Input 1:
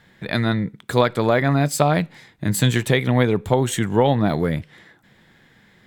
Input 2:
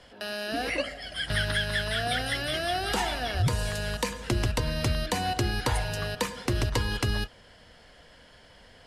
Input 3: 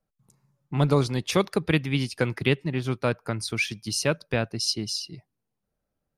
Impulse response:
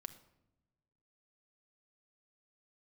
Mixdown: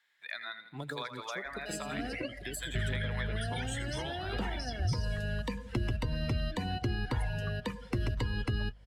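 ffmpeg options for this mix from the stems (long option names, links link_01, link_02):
-filter_complex "[0:a]highpass=1400,volume=-1.5dB,asplit=2[link_01][link_02];[link_02]volume=-9dB[link_03];[1:a]highshelf=frequency=7900:gain=6,aeval=exprs='val(0)+0.00398*(sin(2*PI*50*n/s)+sin(2*PI*2*50*n/s)/2+sin(2*PI*3*50*n/s)/3+sin(2*PI*4*50*n/s)/4+sin(2*PI*5*50*n/s)/5)':channel_layout=same,adynamicequalizer=threshold=0.00501:dfrequency=4200:dqfactor=0.7:tfrequency=4200:tqfactor=0.7:attack=5:release=100:ratio=0.375:range=3.5:mode=cutabove:tftype=highshelf,adelay=1450,volume=0dB[link_04];[2:a]bass=frequency=250:gain=-12,treble=frequency=4000:gain=11,acompressor=threshold=-26dB:ratio=6,volume=-6.5dB,asplit=2[link_05][link_06];[link_06]volume=-14.5dB[link_07];[link_03][link_07]amix=inputs=2:normalize=0,aecho=0:1:82|164|246|328|410|492|574|656:1|0.52|0.27|0.141|0.0731|0.038|0.0198|0.0103[link_08];[link_01][link_04][link_05][link_08]amix=inputs=4:normalize=0,afftdn=noise_reduction=14:noise_floor=-32,acrossover=split=330|1300[link_09][link_10][link_11];[link_09]acompressor=threshold=-29dB:ratio=4[link_12];[link_10]acompressor=threshold=-45dB:ratio=4[link_13];[link_11]acompressor=threshold=-42dB:ratio=4[link_14];[link_12][link_13][link_14]amix=inputs=3:normalize=0"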